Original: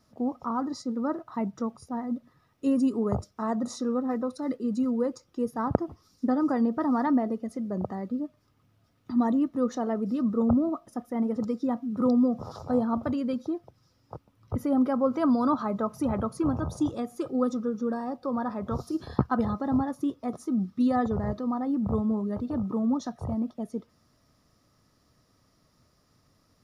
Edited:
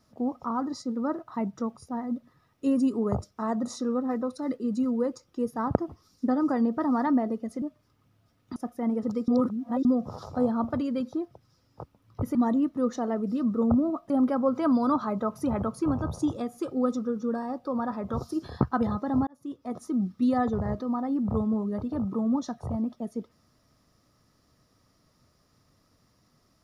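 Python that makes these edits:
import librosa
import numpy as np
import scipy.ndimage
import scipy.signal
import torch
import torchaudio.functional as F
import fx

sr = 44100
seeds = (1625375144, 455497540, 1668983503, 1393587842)

y = fx.edit(x, sr, fx.cut(start_s=7.62, length_s=0.58),
    fx.move(start_s=9.14, length_s=1.75, to_s=14.68),
    fx.reverse_span(start_s=11.61, length_s=0.57),
    fx.fade_in_span(start_s=19.85, length_s=0.56), tone=tone)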